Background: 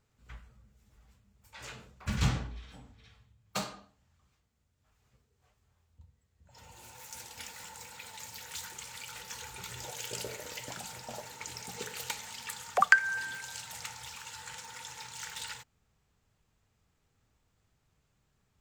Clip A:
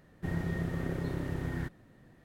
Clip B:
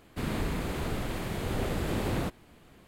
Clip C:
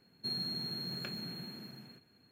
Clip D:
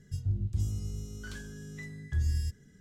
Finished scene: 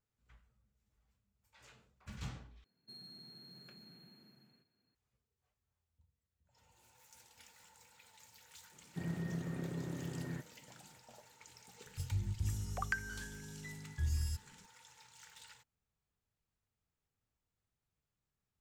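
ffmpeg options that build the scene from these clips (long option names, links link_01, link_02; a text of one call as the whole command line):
ffmpeg -i bed.wav -i cue0.wav -i cue1.wav -i cue2.wav -i cue3.wav -filter_complex "[0:a]volume=-16dB[link_01];[3:a]asoftclip=type=tanh:threshold=-31dB[link_02];[1:a]highpass=frequency=150:width_type=q:width=1.6[link_03];[4:a]aemphasis=mode=production:type=cd[link_04];[link_01]asplit=2[link_05][link_06];[link_05]atrim=end=2.644[link_07];[link_02]atrim=end=2.31,asetpts=PTS-STARTPTS,volume=-15.5dB[link_08];[link_06]atrim=start=4.946[link_09];[link_03]atrim=end=2.24,asetpts=PTS-STARTPTS,volume=-9dB,afade=type=in:duration=0.004:curve=hsin,afade=type=out:start_time=2.236:duration=0.004:curve=hsin,adelay=8730[link_10];[link_04]atrim=end=2.8,asetpts=PTS-STARTPTS,volume=-6dB,afade=type=in:duration=0.004:curve=hsin,afade=type=out:start_time=2.796:duration=0.004:curve=hsin,adelay=523026S[link_11];[link_07][link_08]acrossfade=duration=0.004:curve1=hsin:curve2=hsin[link_12];[link_12][link_09]acrossfade=duration=0.004:curve1=hsin:curve2=hsin[link_13];[link_13][link_10][link_11]amix=inputs=3:normalize=0" out.wav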